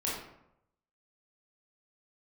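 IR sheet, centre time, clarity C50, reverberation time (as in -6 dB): 57 ms, 1.0 dB, 0.80 s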